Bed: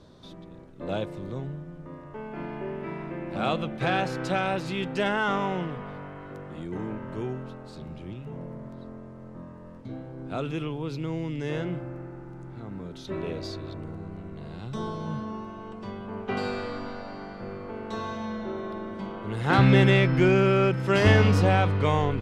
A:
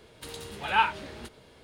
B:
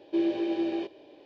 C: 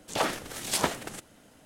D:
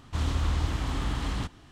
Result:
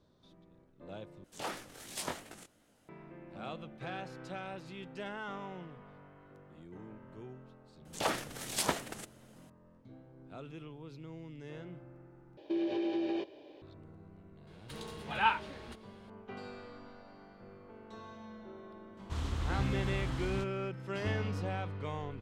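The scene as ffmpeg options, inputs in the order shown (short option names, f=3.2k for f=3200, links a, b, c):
-filter_complex "[3:a]asplit=2[a][b];[0:a]volume=-16dB[c];[a]flanger=delay=17.5:depth=6.3:speed=2.8[d];[2:a]acompressor=threshold=-28dB:ratio=6:attack=3.2:release=140:knee=1:detection=peak[e];[1:a]highshelf=f=7.3k:g=-8.5[f];[c]asplit=3[g][h][i];[g]atrim=end=1.244[j];[d]atrim=end=1.65,asetpts=PTS-STARTPTS,volume=-8.5dB[k];[h]atrim=start=2.886:end=12.374[l];[e]atrim=end=1.25,asetpts=PTS-STARTPTS,volume=-1.5dB[m];[i]atrim=start=13.616[n];[b]atrim=end=1.65,asetpts=PTS-STARTPTS,volume=-5dB,afade=t=in:d=0.004:c=hsin,afade=t=out:st=1.646:d=0.004:c=hsin,adelay=7850[o];[f]atrim=end=1.63,asetpts=PTS-STARTPTS,volume=-5dB,afade=t=in:d=0.004:c=hsin,afade=t=out:st=1.626:d=0.004:c=hsin,adelay=14470[p];[4:a]atrim=end=1.71,asetpts=PTS-STARTPTS,volume=-8.5dB,afade=t=in:d=0.004:c=hsin,afade=t=out:st=1.706:d=0.004:c=hsin,adelay=18970[q];[j][k]acrossfade=d=0.004:c1=hsin:c2=hsin[r];[r][l]acrossfade=d=0.004:c1=hsin:c2=hsin[s];[s][m]acrossfade=d=0.004:c1=hsin:c2=hsin[t];[t][n]acrossfade=d=0.004:c1=hsin:c2=hsin[u];[u][o][p][q]amix=inputs=4:normalize=0"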